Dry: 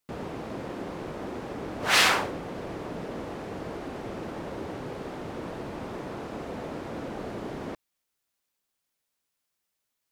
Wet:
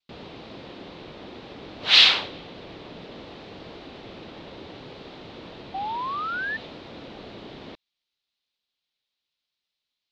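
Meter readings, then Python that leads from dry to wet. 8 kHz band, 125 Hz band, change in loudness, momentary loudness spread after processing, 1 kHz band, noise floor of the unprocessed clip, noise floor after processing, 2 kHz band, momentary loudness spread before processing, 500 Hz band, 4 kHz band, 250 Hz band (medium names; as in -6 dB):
-8.5 dB, -6.0 dB, +11.0 dB, 20 LU, +0.5 dB, -82 dBFS, -85 dBFS, +2.0 dB, 14 LU, -6.0 dB, +10.0 dB, -6.0 dB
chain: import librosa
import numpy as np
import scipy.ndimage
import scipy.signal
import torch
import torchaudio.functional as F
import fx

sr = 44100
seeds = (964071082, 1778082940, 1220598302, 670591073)

y = fx.curve_eq(x, sr, hz=(1600.0, 3900.0, 9200.0), db=(0, 15, -17))
y = fx.spec_paint(y, sr, seeds[0], shape='rise', start_s=5.74, length_s=0.83, low_hz=760.0, high_hz=1800.0, level_db=-24.0)
y = fx.dynamic_eq(y, sr, hz=3400.0, q=1.2, threshold_db=-40.0, ratio=4.0, max_db=5)
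y = fx.vibrato(y, sr, rate_hz=0.64, depth_cents=18.0)
y = y * 10.0 ** (-6.0 / 20.0)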